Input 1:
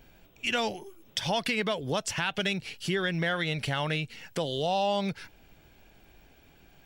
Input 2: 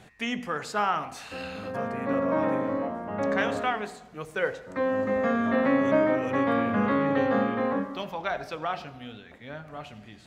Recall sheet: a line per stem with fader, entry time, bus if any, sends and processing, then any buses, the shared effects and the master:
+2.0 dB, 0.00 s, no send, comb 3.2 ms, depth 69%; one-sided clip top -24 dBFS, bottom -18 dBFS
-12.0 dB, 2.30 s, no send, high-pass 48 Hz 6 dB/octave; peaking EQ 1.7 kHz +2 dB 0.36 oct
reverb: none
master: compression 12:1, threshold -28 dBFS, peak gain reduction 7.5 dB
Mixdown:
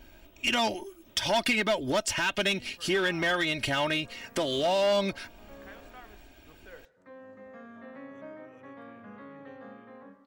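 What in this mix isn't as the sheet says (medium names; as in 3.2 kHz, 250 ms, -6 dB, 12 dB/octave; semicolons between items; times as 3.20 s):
stem 2 -12.0 dB -> -22.5 dB; master: missing compression 12:1, threshold -28 dBFS, peak gain reduction 7.5 dB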